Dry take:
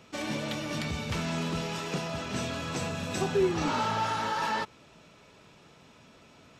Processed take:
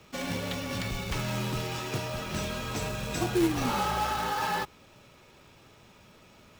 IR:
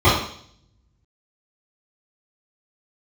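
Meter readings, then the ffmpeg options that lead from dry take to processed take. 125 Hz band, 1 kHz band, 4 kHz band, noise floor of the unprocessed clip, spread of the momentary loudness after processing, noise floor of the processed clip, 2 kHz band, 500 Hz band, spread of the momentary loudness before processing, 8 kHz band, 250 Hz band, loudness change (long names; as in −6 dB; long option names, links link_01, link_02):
+1.5 dB, 0.0 dB, +0.5 dB, −57 dBFS, 7 LU, −57 dBFS, 0.0 dB, −2.0 dB, 6 LU, +1.5 dB, +1.0 dB, 0.0 dB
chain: -af "afreqshift=-43,acrusher=bits=3:mode=log:mix=0:aa=0.000001"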